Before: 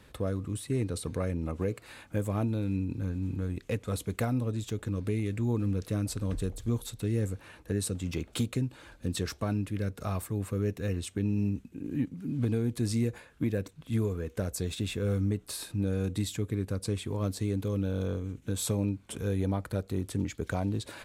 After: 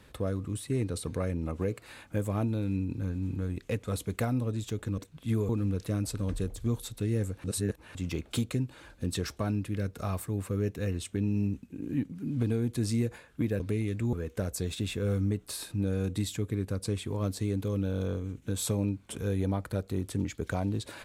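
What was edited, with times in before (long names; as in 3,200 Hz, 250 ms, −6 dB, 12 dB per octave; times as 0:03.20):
0:04.98–0:05.51: swap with 0:13.62–0:14.13
0:07.46–0:07.97: reverse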